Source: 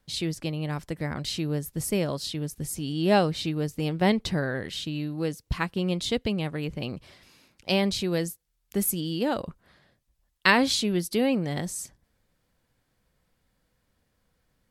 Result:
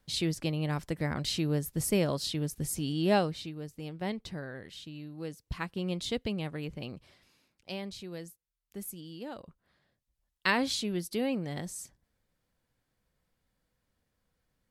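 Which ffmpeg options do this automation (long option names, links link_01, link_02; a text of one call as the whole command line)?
ffmpeg -i in.wav -af "volume=13.5dB,afade=type=out:start_time=2.82:duration=0.69:silence=0.266073,afade=type=in:start_time=5.03:duration=0.93:silence=0.473151,afade=type=out:start_time=6.55:duration=1.22:silence=0.354813,afade=type=in:start_time=9.46:duration=1.16:silence=0.398107" out.wav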